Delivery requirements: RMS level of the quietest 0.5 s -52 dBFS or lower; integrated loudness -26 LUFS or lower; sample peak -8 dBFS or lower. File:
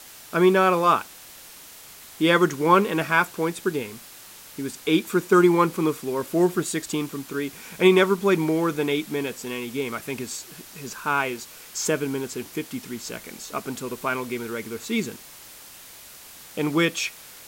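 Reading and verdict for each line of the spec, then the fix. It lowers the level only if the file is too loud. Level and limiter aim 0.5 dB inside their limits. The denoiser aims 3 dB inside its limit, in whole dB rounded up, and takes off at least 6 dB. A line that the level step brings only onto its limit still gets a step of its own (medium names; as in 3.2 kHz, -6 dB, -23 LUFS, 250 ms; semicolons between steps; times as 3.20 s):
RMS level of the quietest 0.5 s -45 dBFS: fail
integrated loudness -23.5 LUFS: fail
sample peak -5.5 dBFS: fail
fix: noise reduction 7 dB, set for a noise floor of -45 dBFS; trim -3 dB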